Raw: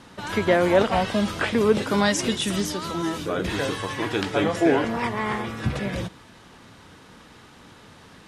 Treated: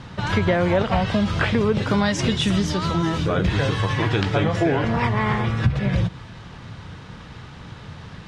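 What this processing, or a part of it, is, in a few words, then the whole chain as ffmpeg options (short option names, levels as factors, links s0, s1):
jukebox: -af "lowpass=5200,lowshelf=f=190:t=q:w=1.5:g=8.5,acompressor=threshold=0.0708:ratio=4,volume=2"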